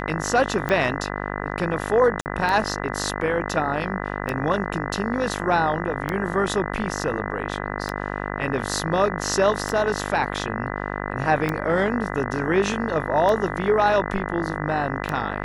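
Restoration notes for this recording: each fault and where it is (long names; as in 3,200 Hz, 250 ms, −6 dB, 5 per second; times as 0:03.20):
mains buzz 50 Hz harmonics 40 −29 dBFS
scratch tick 33 1/3 rpm −11 dBFS
0:02.21–0:02.26: drop-out 49 ms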